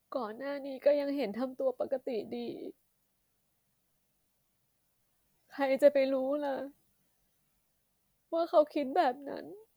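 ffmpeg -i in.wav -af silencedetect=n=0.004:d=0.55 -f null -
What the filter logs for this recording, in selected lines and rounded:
silence_start: 2.70
silence_end: 5.52 | silence_duration: 2.82
silence_start: 6.70
silence_end: 8.32 | silence_duration: 1.63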